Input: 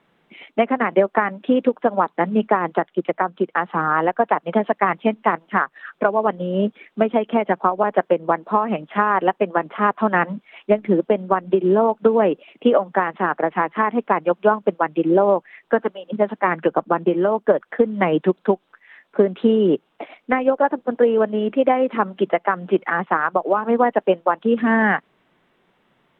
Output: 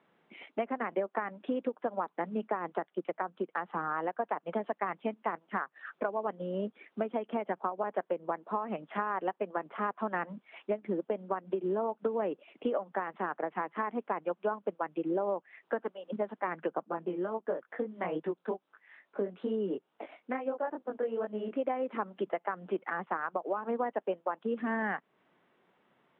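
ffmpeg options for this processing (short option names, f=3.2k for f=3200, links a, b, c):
-filter_complex "[0:a]asplit=3[a][b][c];[a]afade=t=out:st=16.85:d=0.02[d];[b]flanger=delay=18:depth=5:speed=2.3,afade=t=in:st=16.85:d=0.02,afade=t=out:st=21.55:d=0.02[e];[c]afade=t=in:st=21.55:d=0.02[f];[d][e][f]amix=inputs=3:normalize=0,highpass=f=240:p=1,aemphasis=mode=reproduction:type=75kf,acompressor=threshold=-31dB:ratio=2,volume=-5dB"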